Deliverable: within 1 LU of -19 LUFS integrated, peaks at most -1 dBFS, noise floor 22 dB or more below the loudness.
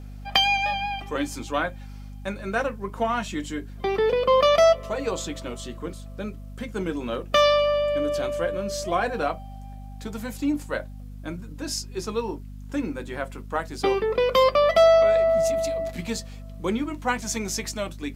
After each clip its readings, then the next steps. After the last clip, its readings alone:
hum 50 Hz; harmonics up to 250 Hz; hum level -36 dBFS; loudness -24.0 LUFS; peak -3.0 dBFS; loudness target -19.0 LUFS
-> notches 50/100/150/200/250 Hz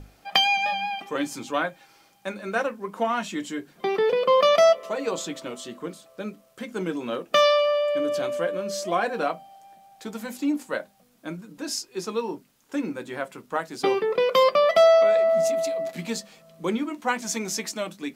hum none; loudness -24.0 LUFS; peak -3.0 dBFS; loudness target -19.0 LUFS
-> gain +5 dB; limiter -1 dBFS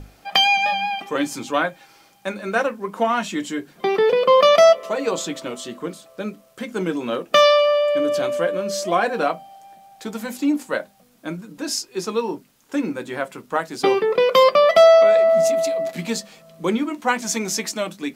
loudness -19.0 LUFS; peak -1.0 dBFS; noise floor -54 dBFS

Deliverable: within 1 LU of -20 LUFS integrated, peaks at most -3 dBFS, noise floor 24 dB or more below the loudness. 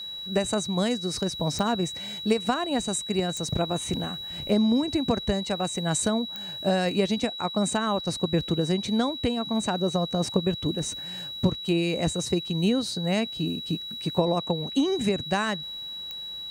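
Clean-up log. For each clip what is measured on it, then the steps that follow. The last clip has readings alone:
clicks 4; steady tone 3900 Hz; tone level -34 dBFS; loudness -26.5 LUFS; peak -9.0 dBFS; loudness target -20.0 LUFS
-> de-click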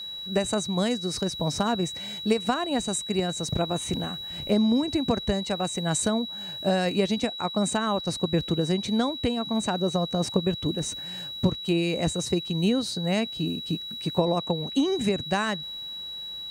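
clicks 0; steady tone 3900 Hz; tone level -34 dBFS
-> notch 3900 Hz, Q 30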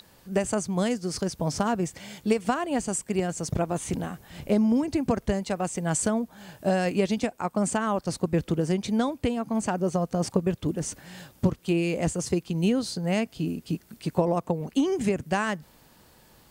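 steady tone none; loudness -27.5 LUFS; peak -9.5 dBFS; loudness target -20.0 LUFS
-> gain +7.5 dB; limiter -3 dBFS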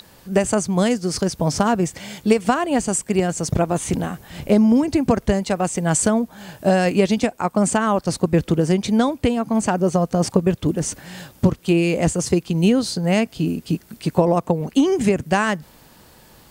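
loudness -20.0 LUFS; peak -3.0 dBFS; noise floor -50 dBFS

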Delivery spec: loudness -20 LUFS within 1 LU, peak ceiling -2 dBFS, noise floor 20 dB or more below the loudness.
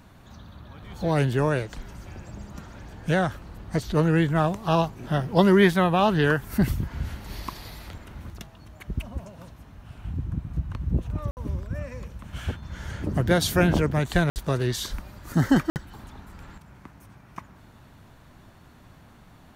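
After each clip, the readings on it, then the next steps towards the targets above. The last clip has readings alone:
dropouts 3; longest dropout 59 ms; loudness -25.0 LUFS; peak -5.0 dBFS; loudness target -20.0 LUFS
-> interpolate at 11.31/14.3/15.7, 59 ms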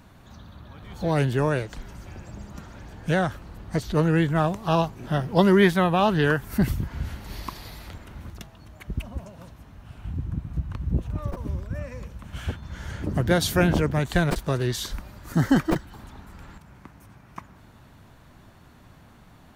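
dropouts 0; loudness -25.0 LUFS; peak -5.0 dBFS; loudness target -20.0 LUFS
-> gain +5 dB; limiter -2 dBFS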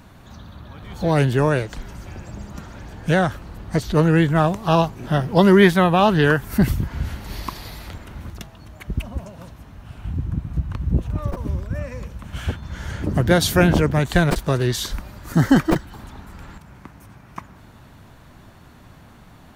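loudness -20.0 LUFS; peak -2.0 dBFS; noise floor -47 dBFS

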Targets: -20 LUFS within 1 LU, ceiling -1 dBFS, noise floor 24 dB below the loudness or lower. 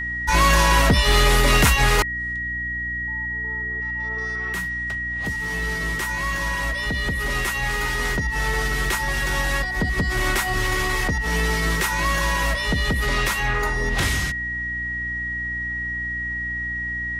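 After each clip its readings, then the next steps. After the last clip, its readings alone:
hum 60 Hz; harmonics up to 300 Hz; hum level -33 dBFS; steady tone 1900 Hz; tone level -25 dBFS; loudness -22.0 LUFS; peak -6.0 dBFS; loudness target -20.0 LUFS
-> notches 60/120/180/240/300 Hz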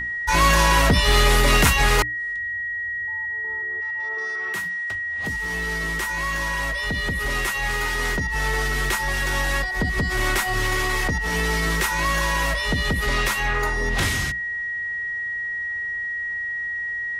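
hum none; steady tone 1900 Hz; tone level -25 dBFS
-> notch 1900 Hz, Q 30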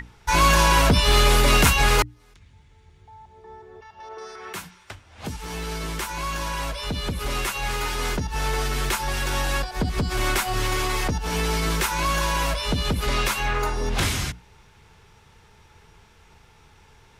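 steady tone none; loudness -23.0 LUFS; peak -6.0 dBFS; loudness target -20.0 LUFS
-> gain +3 dB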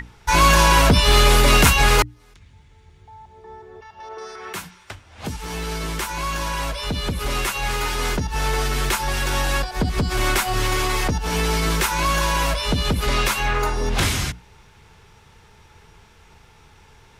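loudness -20.0 LUFS; peak -3.0 dBFS; noise floor -51 dBFS

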